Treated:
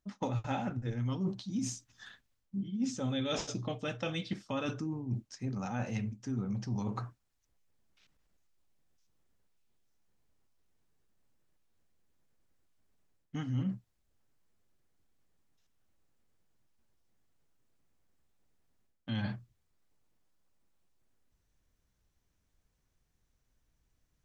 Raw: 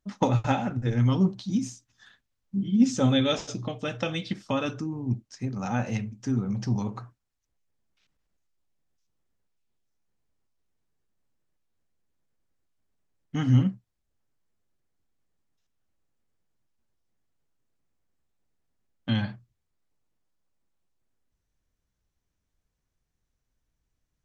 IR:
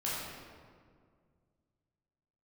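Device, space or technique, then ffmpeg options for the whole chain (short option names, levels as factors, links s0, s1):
compression on the reversed sound: -af "areverse,acompressor=threshold=0.0141:ratio=4,areverse,volume=1.41"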